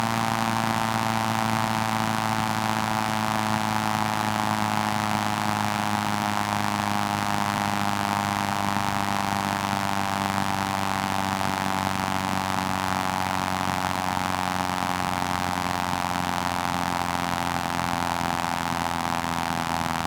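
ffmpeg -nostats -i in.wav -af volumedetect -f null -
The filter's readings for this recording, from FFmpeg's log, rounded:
mean_volume: -25.6 dB
max_volume: -6.7 dB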